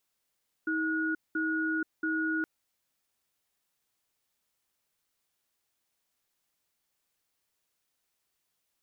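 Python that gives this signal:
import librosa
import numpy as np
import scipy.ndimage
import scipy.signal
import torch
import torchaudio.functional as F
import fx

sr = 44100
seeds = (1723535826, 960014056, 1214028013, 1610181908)

y = fx.cadence(sr, length_s=1.77, low_hz=318.0, high_hz=1450.0, on_s=0.48, off_s=0.2, level_db=-30.0)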